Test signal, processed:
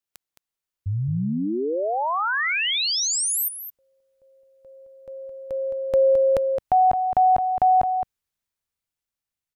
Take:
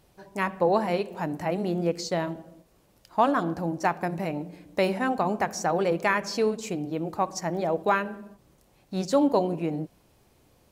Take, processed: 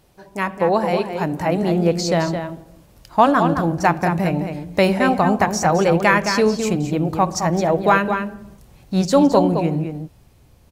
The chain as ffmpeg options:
-filter_complex "[0:a]asubboost=boost=2.5:cutoff=180,dynaudnorm=f=110:g=21:m=1.68,asplit=2[s0][s1];[s1]adelay=215.7,volume=0.447,highshelf=f=4000:g=-4.85[s2];[s0][s2]amix=inputs=2:normalize=0,volume=1.68"

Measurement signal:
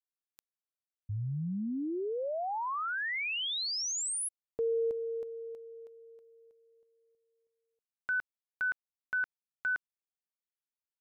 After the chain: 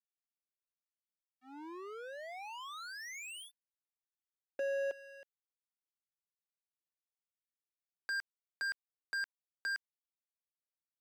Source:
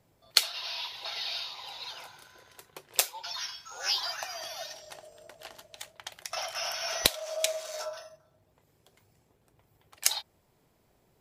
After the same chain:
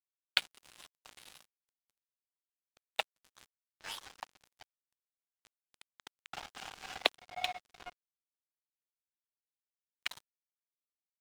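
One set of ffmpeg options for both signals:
-af "highpass=f=160:t=q:w=0.5412,highpass=f=160:t=q:w=1.307,lowpass=f=3500:t=q:w=0.5176,lowpass=f=3500:t=q:w=0.7071,lowpass=f=3500:t=q:w=1.932,afreqshift=94,aeval=exprs='sgn(val(0))*max(abs(val(0))-0.0188,0)':c=same,volume=1.12"

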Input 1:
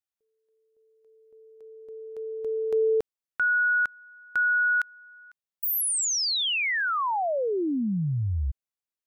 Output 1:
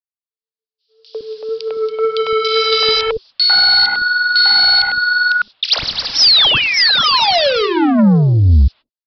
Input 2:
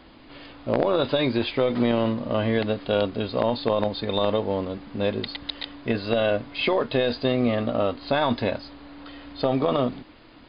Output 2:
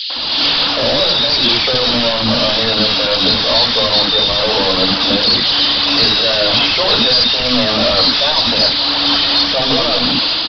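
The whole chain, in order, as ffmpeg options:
-filter_complex "[0:a]highpass=f=54:p=1,asplit=2[s0][s1];[s1]highpass=f=720:p=1,volume=70.8,asoftclip=type=tanh:threshold=0.376[s2];[s0][s2]amix=inputs=2:normalize=0,lowpass=f=3900:p=1,volume=0.501,aexciter=amount=10.3:drive=5.5:freq=3100,acompressor=threshold=0.447:ratio=4:attack=11:release=211:knee=6,agate=range=0.00126:threshold=0.0178:ratio=16:release=212:detection=rms,aphaser=in_gain=1:out_gain=1:delay=3.7:decay=0.4:speed=1.9:type=triangular,aresample=11025,asoftclip=type=tanh:threshold=0.188,aresample=44100,bandreject=f=380:w=12,acrossover=split=380|2600[s3][s4][s5];[s4]adelay=100[s6];[s3]adelay=160[s7];[s7][s6][s5]amix=inputs=3:normalize=0,dynaudnorm=f=150:g=5:m=4.47,volume=0.891"

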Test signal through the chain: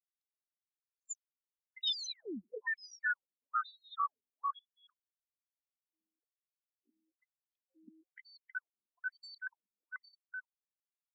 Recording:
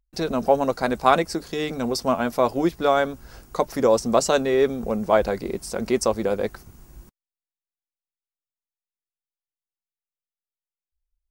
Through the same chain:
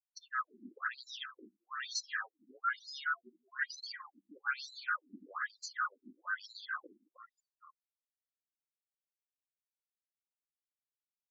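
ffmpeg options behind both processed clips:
-af "afftfilt=real='real(if(lt(b,960),b+48*(1-2*mod(floor(b/48),2)),b),0)':imag='imag(if(lt(b,960),b+48*(1-2*mod(floor(b/48),2)),b),0)':win_size=2048:overlap=0.75,agate=range=0.00282:threshold=0.00282:ratio=16:detection=peak,asoftclip=type=tanh:threshold=0.119,acontrast=60,aphaser=in_gain=1:out_gain=1:delay=1.4:decay=0.66:speed=0.18:type=sinusoidal,equalizer=f=530:t=o:w=1.7:g=-7,areverse,acompressor=threshold=0.0562:ratio=16,areverse,highpass=190,afftdn=nr=33:nf=-40,aecho=1:1:296|312|615:0.422|0.562|0.335,afftfilt=real='re*between(b*sr/1024,250*pow(5500/250,0.5+0.5*sin(2*PI*1.1*pts/sr))/1.41,250*pow(5500/250,0.5+0.5*sin(2*PI*1.1*pts/sr))*1.41)':imag='im*between(b*sr/1024,250*pow(5500/250,0.5+0.5*sin(2*PI*1.1*pts/sr))/1.41,250*pow(5500/250,0.5+0.5*sin(2*PI*1.1*pts/sr))*1.41)':win_size=1024:overlap=0.75,volume=0.531"

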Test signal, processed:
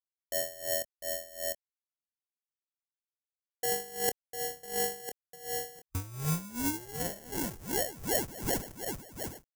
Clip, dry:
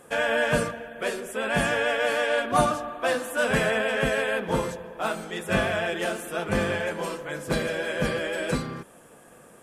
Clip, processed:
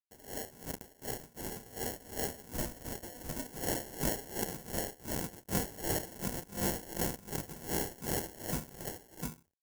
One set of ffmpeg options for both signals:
-filter_complex "[0:a]aresample=16000,acrusher=bits=4:mix=0:aa=0.000001,aresample=44100,aecho=1:1:701:0.251,areverse,acompressor=threshold=0.0251:ratio=20,areverse,highpass=f=41:p=1,equalizer=f=630:t=o:w=1.1:g=-12,afwtdn=0.00562,asplit=2[s0][s1];[s1]adelay=25,volume=0.299[s2];[s0][s2]amix=inputs=2:normalize=0,acrusher=samples=36:mix=1:aa=0.000001,aexciter=amount=3.7:drive=5.7:freq=5500,dynaudnorm=f=270:g=17:m=2.24,aeval=exprs='val(0)*pow(10,-19*(0.5-0.5*cos(2*PI*2.7*n/s))/20)':c=same"

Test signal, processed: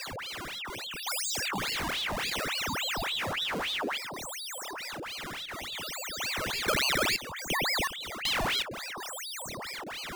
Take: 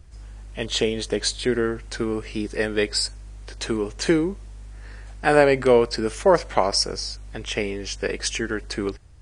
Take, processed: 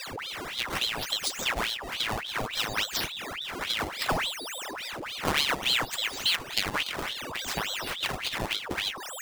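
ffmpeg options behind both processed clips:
-filter_complex "[0:a]acrossover=split=910[s0][s1];[s0]acrusher=bits=4:mode=log:mix=0:aa=0.000001[s2];[s2][s1]amix=inputs=2:normalize=0,aeval=exprs='val(0)+0.0224*sin(2*PI*4200*n/s)':c=same,acompressor=threshold=0.0501:ratio=2,acrusher=samples=14:mix=1:aa=0.000001:lfo=1:lforange=22.4:lforate=0.62,aeval=exprs='val(0)*sin(2*PI*2000*n/s+2000*0.85/3.5*sin(2*PI*3.5*n/s))':c=same"

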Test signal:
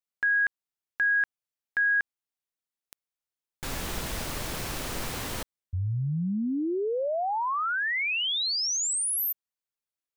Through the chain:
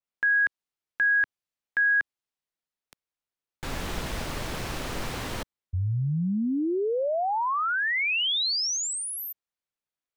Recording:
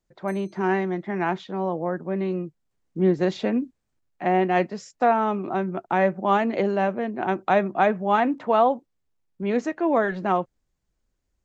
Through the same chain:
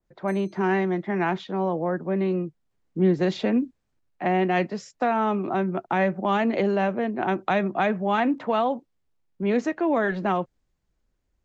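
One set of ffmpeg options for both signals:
-filter_complex "[0:a]lowpass=f=3500:p=1,acrossover=split=240|1800[s0][s1][s2];[s1]acompressor=threshold=0.0794:ratio=6:attack=3.5:release=169:knee=2.83:detection=peak[s3];[s0][s3][s2]amix=inputs=3:normalize=0,adynamicequalizer=threshold=0.0112:dfrequency=2500:dqfactor=0.7:tfrequency=2500:tqfactor=0.7:attack=5:release=100:ratio=0.375:range=2:mode=boostabove:tftype=highshelf,volume=1.26"

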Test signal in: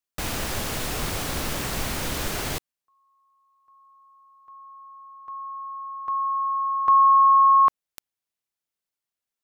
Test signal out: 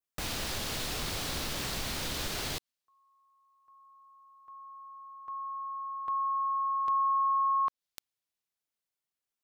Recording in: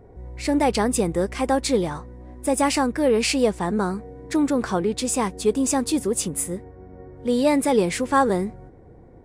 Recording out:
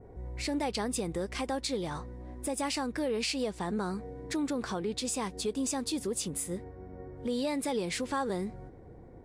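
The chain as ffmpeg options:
-af "adynamicequalizer=threshold=0.00708:dfrequency=4100:dqfactor=1.1:tfrequency=4100:tqfactor=1.1:attack=5:release=100:ratio=0.375:range=3.5:mode=boostabove:tftype=bell,acompressor=threshold=0.0501:ratio=3:attack=0.46:release=384:knee=1:detection=peak,volume=0.708"

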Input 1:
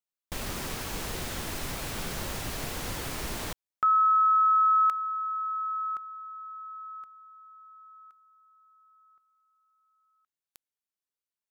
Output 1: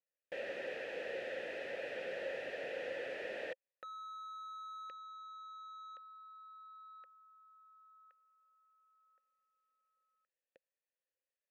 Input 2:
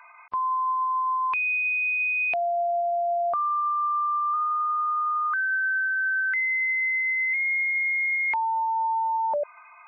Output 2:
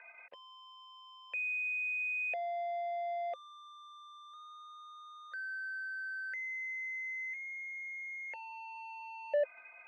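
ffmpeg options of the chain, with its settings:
-filter_complex "[0:a]asplit=2[s0][s1];[s1]highpass=f=720:p=1,volume=12.6,asoftclip=type=tanh:threshold=0.126[s2];[s0][s2]amix=inputs=2:normalize=0,lowpass=f=1200:p=1,volume=0.501,asplit=3[s3][s4][s5];[s3]bandpass=f=530:t=q:w=8,volume=1[s6];[s4]bandpass=f=1840:t=q:w=8,volume=0.501[s7];[s5]bandpass=f=2480:t=q:w=8,volume=0.355[s8];[s6][s7][s8]amix=inputs=3:normalize=0,volume=1.12"

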